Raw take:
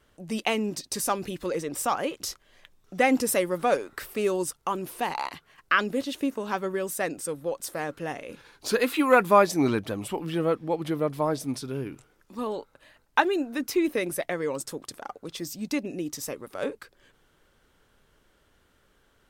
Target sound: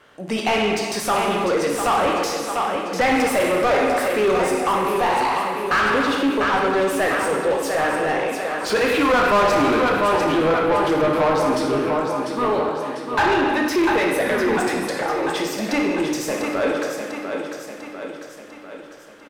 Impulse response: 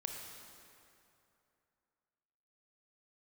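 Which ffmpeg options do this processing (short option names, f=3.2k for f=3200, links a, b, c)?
-filter_complex "[0:a]aecho=1:1:697|1394|2091|2788|3485|4182:0.335|0.174|0.0906|0.0471|0.0245|0.0127[a];[1:a]atrim=start_sample=2205,asetrate=88200,aresample=44100[b];[a][b]afir=irnorm=-1:irlink=0,asettb=1/sr,asplit=3[c][d][e];[c]atrim=end=14.214[f];[d]atrim=start=14.21:end=15.02,asetpts=PTS-STARTPTS,afade=t=in:d=0.004:c=qsin,afade=t=out:st=0.806:d=0.004:c=qsin,afreqshift=-100[g];[e]atrim=start=15.016[h];[f][g]acrossfade=d=0.004:c1=hsin:c2=qsin[i];[i][h]acrossfade=d=0.004:c1=qsin:c2=hsin,asplit=2[j][k];[k]highpass=f=720:p=1,volume=29dB,asoftclip=type=tanh:threshold=-12.5dB[l];[j][l]amix=inputs=2:normalize=0,lowpass=f=1.8k:p=1,volume=-6dB,volume=3.5dB"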